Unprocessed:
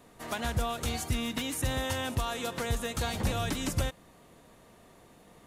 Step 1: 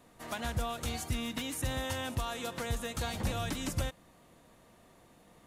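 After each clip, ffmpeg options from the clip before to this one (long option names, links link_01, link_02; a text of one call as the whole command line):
ffmpeg -i in.wav -af "bandreject=frequency=420:width=12,volume=-3.5dB" out.wav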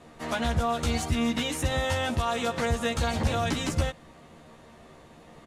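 ffmpeg -i in.wav -filter_complex "[0:a]adynamicsmooth=sensitivity=4:basefreq=7600,alimiter=level_in=4dB:limit=-24dB:level=0:latency=1,volume=-4dB,asplit=2[link_01][link_02];[link_02]adelay=13,volume=-2.5dB[link_03];[link_01][link_03]amix=inputs=2:normalize=0,volume=8dB" out.wav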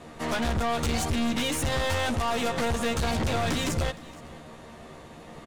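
ffmpeg -i in.wav -af "aeval=exprs='(tanh(35.5*val(0)+0.4)-tanh(0.4))/35.5':channel_layout=same,aecho=1:1:466:0.0841,volume=7dB" out.wav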